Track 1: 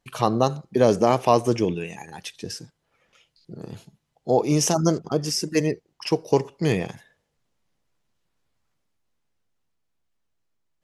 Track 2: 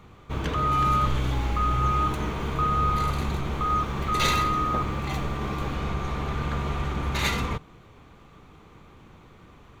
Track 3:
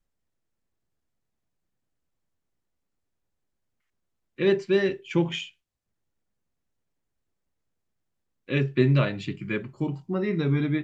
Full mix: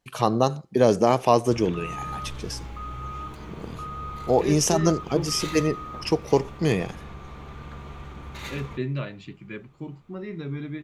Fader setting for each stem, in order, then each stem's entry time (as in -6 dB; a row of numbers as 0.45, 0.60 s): -0.5, -11.5, -8.5 dB; 0.00, 1.20, 0.00 s